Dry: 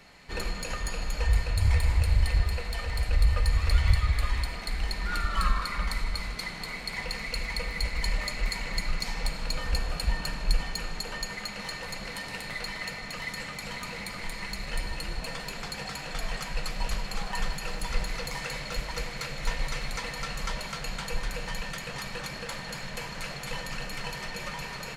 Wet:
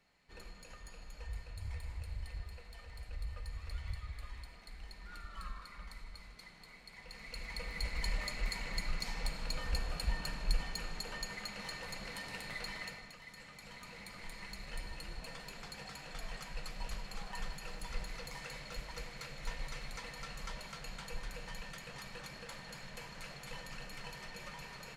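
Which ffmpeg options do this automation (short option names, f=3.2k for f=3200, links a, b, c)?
-af "volume=-0.5dB,afade=t=in:st=7.02:d=0.93:silence=0.251189,afade=t=out:st=12.76:d=0.42:silence=0.281838,afade=t=in:st=13.18:d=1.18:silence=0.446684"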